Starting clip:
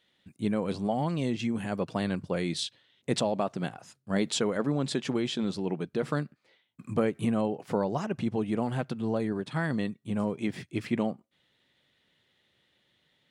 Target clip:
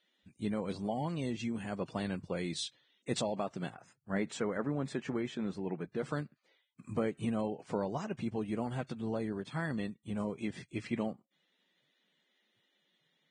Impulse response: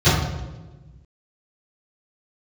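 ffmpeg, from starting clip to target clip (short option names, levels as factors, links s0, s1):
-filter_complex "[0:a]asettb=1/sr,asplit=3[s0][s1][s2];[s0]atrim=end=3.754[s3];[s1]atrim=start=3.75:end=5.98,asetpts=PTS-STARTPTS,afade=t=in:d=0.004:c=qsin,afade=t=out:st=2.226:d=0.004:c=qsin,highshelf=f=2700:t=q:w=1.5:g=-8[s4];[s2]atrim=start=5.976[s5];[s3][s4]acrossfade=d=0.004:c1=hsin:c2=qsin[s6];[s6][s5]acrossfade=d=0.004:c1=qsin:c2=hsin,volume=0.473" -ar 22050 -c:a libvorbis -b:a 16k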